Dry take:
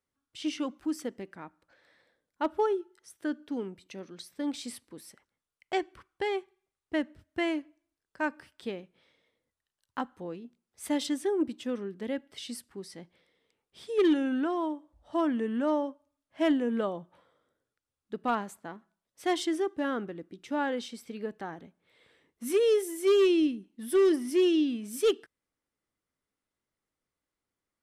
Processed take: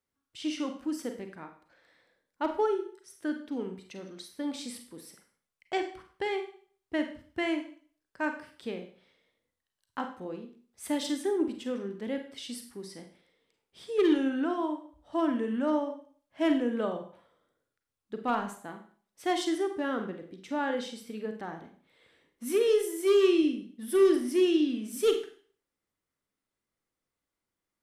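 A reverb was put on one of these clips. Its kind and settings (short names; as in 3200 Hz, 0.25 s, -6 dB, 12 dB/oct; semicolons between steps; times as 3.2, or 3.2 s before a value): Schroeder reverb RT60 0.46 s, combs from 33 ms, DRR 5.5 dB; gain -1 dB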